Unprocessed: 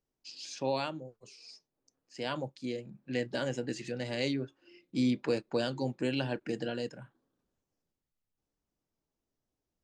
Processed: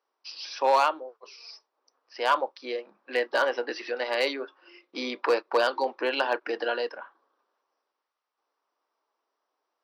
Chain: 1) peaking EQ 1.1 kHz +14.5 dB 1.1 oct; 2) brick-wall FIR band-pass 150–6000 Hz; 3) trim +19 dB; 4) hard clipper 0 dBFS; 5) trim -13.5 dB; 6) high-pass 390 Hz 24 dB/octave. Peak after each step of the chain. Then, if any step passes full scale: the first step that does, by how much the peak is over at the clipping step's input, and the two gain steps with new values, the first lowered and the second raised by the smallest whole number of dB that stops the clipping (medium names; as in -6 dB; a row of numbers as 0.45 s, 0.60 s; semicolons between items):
-13.5 dBFS, -14.0 dBFS, +5.0 dBFS, 0.0 dBFS, -13.5 dBFS, -9.5 dBFS; step 3, 5.0 dB; step 3 +14 dB, step 5 -8.5 dB